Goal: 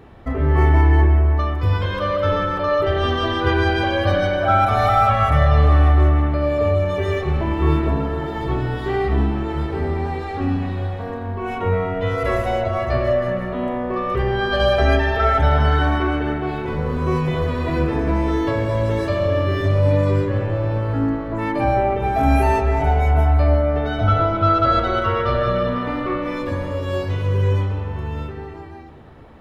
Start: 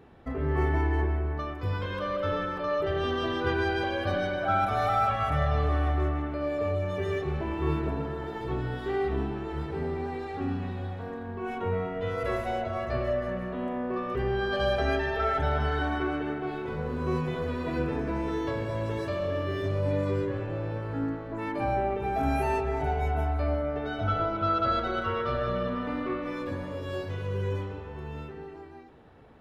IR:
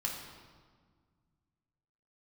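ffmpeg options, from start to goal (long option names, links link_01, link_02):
-filter_complex "[0:a]asplit=2[link_01][link_02];[1:a]atrim=start_sample=2205,lowshelf=frequency=130:gain=7.5[link_03];[link_02][link_03]afir=irnorm=-1:irlink=0,volume=-10.5dB[link_04];[link_01][link_04]amix=inputs=2:normalize=0,volume=7.5dB"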